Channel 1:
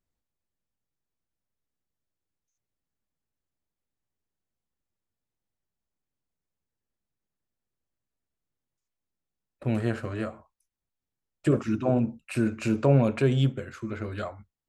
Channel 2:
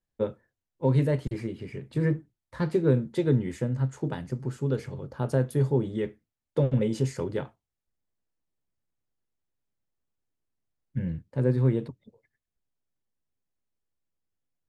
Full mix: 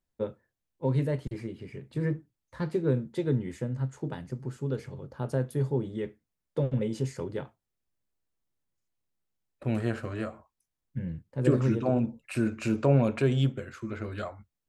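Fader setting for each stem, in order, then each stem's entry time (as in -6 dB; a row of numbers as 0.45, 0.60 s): -2.0, -4.0 dB; 0.00, 0.00 s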